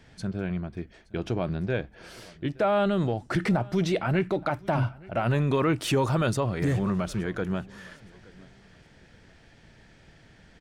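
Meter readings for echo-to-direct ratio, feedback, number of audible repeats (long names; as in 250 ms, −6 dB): −23.0 dB, 29%, 2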